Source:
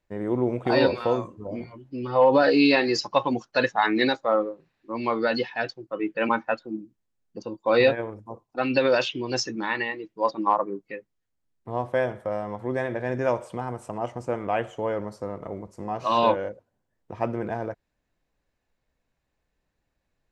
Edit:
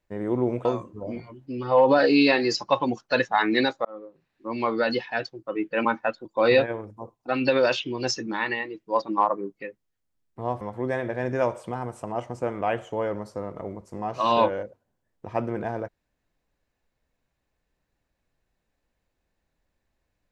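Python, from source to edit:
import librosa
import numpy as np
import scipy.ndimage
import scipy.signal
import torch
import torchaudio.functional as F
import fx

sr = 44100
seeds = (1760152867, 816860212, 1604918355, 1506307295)

y = fx.edit(x, sr, fx.cut(start_s=0.65, length_s=0.44),
    fx.fade_in_span(start_s=4.29, length_s=0.62),
    fx.cut(start_s=6.69, length_s=0.85),
    fx.cut(start_s=11.9, length_s=0.57), tone=tone)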